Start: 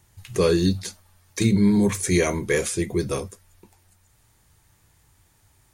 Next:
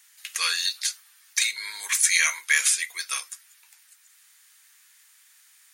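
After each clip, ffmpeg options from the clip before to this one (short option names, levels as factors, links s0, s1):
-af "highpass=f=1500:w=0.5412,highpass=f=1500:w=1.3066,volume=2.51"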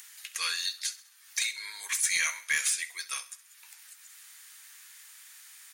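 -af "aecho=1:1:66|132|198|264:0.133|0.0627|0.0295|0.0138,acompressor=mode=upward:threshold=0.02:ratio=2.5,aeval=exprs='0.562*(cos(1*acos(clip(val(0)/0.562,-1,1)))-cos(1*PI/2))+0.0316*(cos(2*acos(clip(val(0)/0.562,-1,1)))-cos(2*PI/2))+0.0398*(cos(5*acos(clip(val(0)/0.562,-1,1)))-cos(5*PI/2))+0.00794*(cos(6*acos(clip(val(0)/0.562,-1,1)))-cos(6*PI/2))+0.01*(cos(8*acos(clip(val(0)/0.562,-1,1)))-cos(8*PI/2))':c=same,volume=0.376"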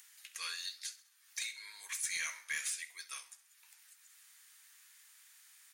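-af "flanger=delay=9.8:depth=9.4:regen=-79:speed=1:shape=sinusoidal,volume=0.531"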